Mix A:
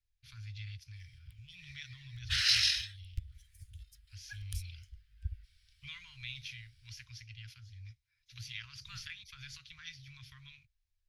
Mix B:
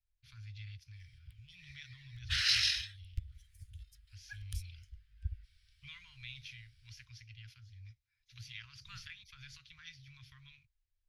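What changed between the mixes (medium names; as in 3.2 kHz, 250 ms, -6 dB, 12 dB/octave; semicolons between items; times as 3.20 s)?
first voice -3.0 dB; master: add treble shelf 4.4 kHz -4.5 dB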